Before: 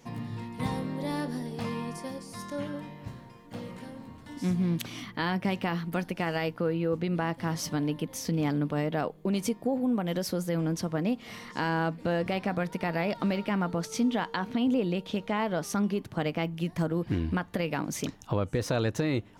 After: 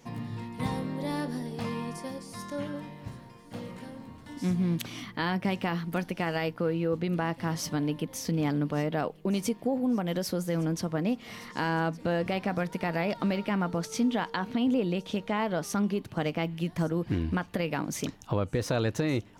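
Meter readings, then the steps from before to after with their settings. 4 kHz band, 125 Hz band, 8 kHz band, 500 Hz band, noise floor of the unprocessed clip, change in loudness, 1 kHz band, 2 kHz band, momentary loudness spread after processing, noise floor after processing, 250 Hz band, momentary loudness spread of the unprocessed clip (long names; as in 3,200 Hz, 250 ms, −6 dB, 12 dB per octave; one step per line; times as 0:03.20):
0.0 dB, 0.0 dB, 0.0 dB, 0.0 dB, −51 dBFS, 0.0 dB, 0.0 dB, 0.0 dB, 10 LU, −51 dBFS, 0.0 dB, 10 LU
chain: delay with a high-pass on its return 1,164 ms, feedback 50%, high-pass 3,500 Hz, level −19 dB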